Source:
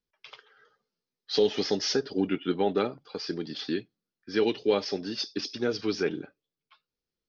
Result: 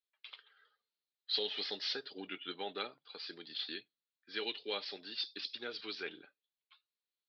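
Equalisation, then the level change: band-pass 4100 Hz, Q 4.1; air absorption 490 m; +15.5 dB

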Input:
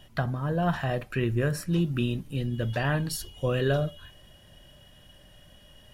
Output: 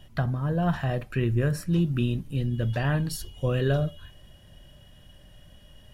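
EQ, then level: low shelf 210 Hz +7 dB; -2.0 dB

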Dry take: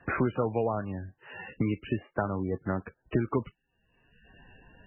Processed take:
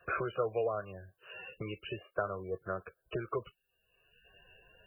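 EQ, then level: tone controls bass -9 dB, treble +14 dB; fixed phaser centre 1300 Hz, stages 8; -1.0 dB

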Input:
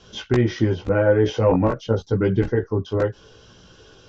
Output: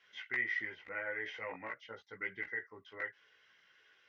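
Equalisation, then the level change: band-pass 2000 Hz, Q 14; +6.5 dB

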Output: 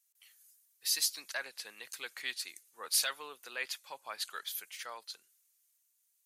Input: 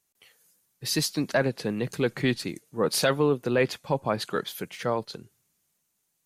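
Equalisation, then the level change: HPF 1400 Hz 12 dB/oct; high shelf 5300 Hz +10 dB; -7.5 dB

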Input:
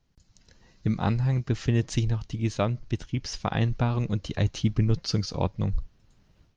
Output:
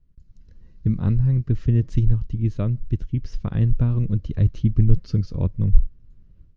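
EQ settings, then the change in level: tilt -4 dB/oct; bell 780 Hz -12 dB 0.52 oct; -6.0 dB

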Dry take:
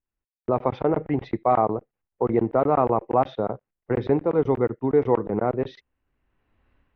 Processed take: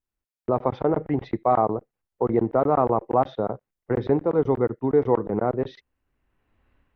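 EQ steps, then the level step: dynamic EQ 2500 Hz, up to -7 dB, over -48 dBFS, Q 2.4; 0.0 dB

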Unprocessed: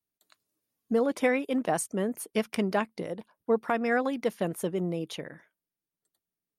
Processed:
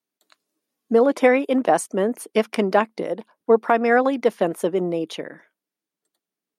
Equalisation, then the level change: weighting filter A; dynamic EQ 790 Hz, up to +4 dB, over -41 dBFS, Q 0.71; bell 250 Hz +11 dB 2.4 oct; +4.0 dB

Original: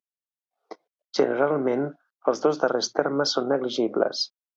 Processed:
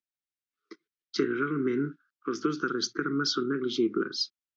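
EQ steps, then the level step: elliptic band-stop 370–1300 Hz, stop band 70 dB; air absorption 64 m; 0.0 dB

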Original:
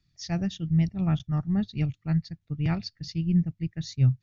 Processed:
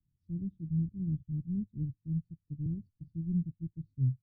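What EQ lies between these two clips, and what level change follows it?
inverse Chebyshev low-pass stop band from 680 Hz, stop band 40 dB; air absorption 280 m; -8.0 dB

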